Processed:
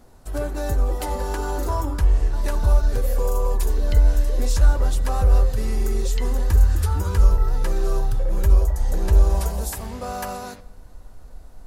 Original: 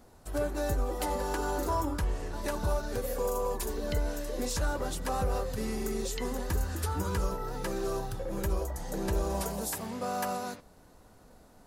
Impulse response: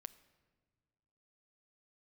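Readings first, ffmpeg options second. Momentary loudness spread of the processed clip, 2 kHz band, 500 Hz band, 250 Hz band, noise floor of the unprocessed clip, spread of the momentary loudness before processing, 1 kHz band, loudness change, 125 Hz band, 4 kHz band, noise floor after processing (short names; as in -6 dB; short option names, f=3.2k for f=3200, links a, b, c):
10 LU, +3.5 dB, +3.0 dB, +2.5 dB, -57 dBFS, 4 LU, +3.5 dB, +11.0 dB, +14.0 dB, +3.5 dB, -43 dBFS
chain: -filter_complex "[0:a]asplit=2[a][b];[b]asubboost=boost=4.5:cutoff=89[c];[1:a]atrim=start_sample=2205,asetrate=39690,aresample=44100,lowshelf=f=91:g=8[d];[c][d]afir=irnorm=-1:irlink=0,volume=13.5dB[e];[a][e]amix=inputs=2:normalize=0,volume=-7.5dB"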